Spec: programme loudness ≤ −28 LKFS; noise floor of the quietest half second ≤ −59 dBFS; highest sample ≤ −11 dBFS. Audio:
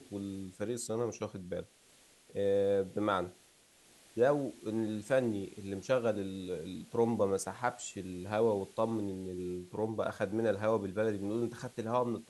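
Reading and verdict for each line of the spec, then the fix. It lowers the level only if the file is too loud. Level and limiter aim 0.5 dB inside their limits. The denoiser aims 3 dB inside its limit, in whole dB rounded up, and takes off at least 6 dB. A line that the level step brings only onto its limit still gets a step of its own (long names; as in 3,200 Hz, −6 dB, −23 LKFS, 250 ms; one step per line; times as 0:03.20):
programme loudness −34.5 LKFS: in spec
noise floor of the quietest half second −64 dBFS: in spec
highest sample −16.0 dBFS: in spec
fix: no processing needed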